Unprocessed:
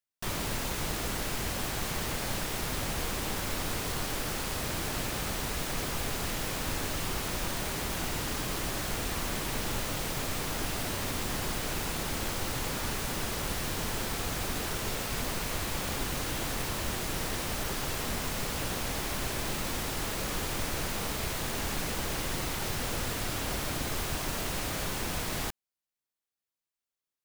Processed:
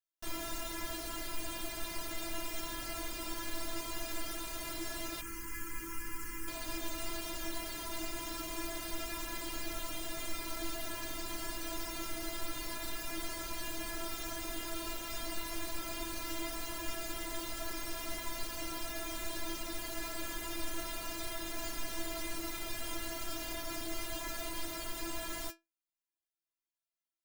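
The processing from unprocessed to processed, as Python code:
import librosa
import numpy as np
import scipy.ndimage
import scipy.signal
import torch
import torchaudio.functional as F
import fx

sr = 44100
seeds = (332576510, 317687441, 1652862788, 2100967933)

y = fx.stiff_resonator(x, sr, f0_hz=330.0, decay_s=0.2, stiffness=0.002)
y = fx.fixed_phaser(y, sr, hz=1600.0, stages=4, at=(5.21, 6.48))
y = y * librosa.db_to_amplitude(6.0)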